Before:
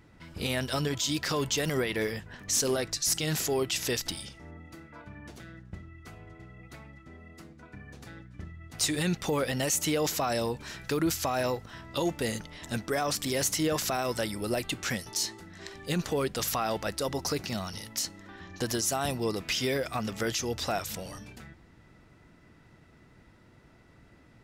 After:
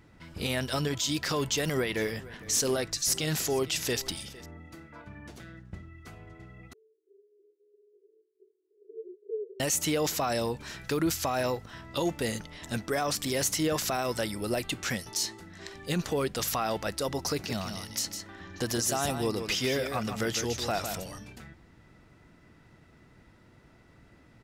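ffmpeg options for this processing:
-filter_complex "[0:a]asettb=1/sr,asplit=3[a][b][c];[a]atrim=end=1.514[d];[b]atrim=start=1.51:end=4.46,asetpts=PTS-STARTPTS,afade=t=in:d=0.004:c=qsin,afade=t=out:st=2.946:d=0.004:c=qsin,aecho=1:1:455:0.106,atrim=end_sample=130095[e];[c]atrim=start=4.456[f];[d][e]acrossfade=d=0.004:c1=hsin:c2=qsin[g];[g][f]acrossfade=d=0.004:c1=qsin:c2=hsin,asettb=1/sr,asplit=3[h][i][j];[h]atrim=end=6.734[k];[i]atrim=start=6.73:end=9.6,asetpts=PTS-STARTPTS,afade=t=in:d=0.004:c=qsin,afade=t=out:st=2.866:d=0.004:c=qsin,asuperpass=centerf=410:order=8:qfactor=4.9[l];[j]atrim=start=9.596[m];[k][l]acrossfade=d=0.004:c1=hsin:c2=qsin[n];[n][m]acrossfade=d=0.004:c1=qsin:c2=hsin,asplit=3[o][p][q];[o]afade=t=out:st=17.48:d=0.02[r];[p]aecho=1:1:155:0.422,afade=t=in:st=17.48:d=0.02,afade=t=out:st=21.03:d=0.02[s];[q]afade=t=in:st=21.03:d=0.02[t];[r][s][t]amix=inputs=3:normalize=0"

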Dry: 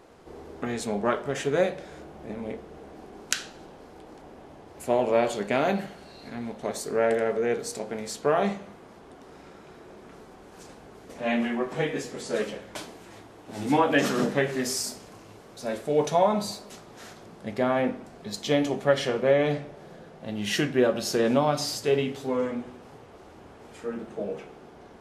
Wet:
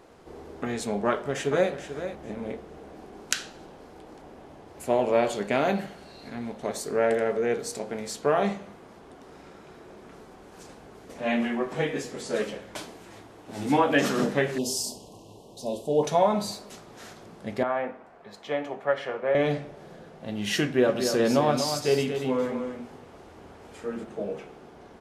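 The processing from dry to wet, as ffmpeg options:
-filter_complex "[0:a]asplit=2[a][b];[b]afade=t=in:st=1.07:d=0.01,afade=t=out:st=1.71:d=0.01,aecho=0:1:440|880|1320:0.298538|0.0597077|0.0119415[c];[a][c]amix=inputs=2:normalize=0,asettb=1/sr,asplit=3[d][e][f];[d]atrim=end=14.584[g];[e]atrim=start=14.58:end=16.03,asetpts=PTS-STARTPTS,afade=t=in:d=0.004:c=qsin,afade=t=out:st=1.446:d=0.004:c=qsin,asuperstop=centerf=1700:order=12:qfactor=0.99[h];[f]atrim=start=16.026[i];[g][h]acrossfade=d=0.004:c1=hsin:c2=qsin[j];[j][i]acrossfade=d=0.004:c1=qsin:c2=hsin,asettb=1/sr,asplit=3[k][l][m];[k]atrim=end=17.634[n];[l]atrim=start=17.63:end=19.35,asetpts=PTS-STARTPTS,afade=t=in:d=0.004:c=qsin,afade=t=out:st=1.716:d=0.004:c=qsin,acrossover=split=510 2300:gain=0.2 1 0.126[o][p][q];[o][p][q]amix=inputs=3:normalize=0[r];[m]atrim=start=19.346[s];[n][r]acrossfade=d=0.004:c1=hsin:c2=qsin[t];[t][s]acrossfade=d=0.004:c1=qsin:c2=hsin,asplit=3[u][v][w];[u]afade=t=out:st=20.87:d=0.02[x];[v]aecho=1:1:238:0.447,afade=t=in:st=20.87:d=0.02,afade=t=out:st=24.03:d=0.02[y];[w]afade=t=in:st=24.03:d=0.02[z];[x][y][z]amix=inputs=3:normalize=0"

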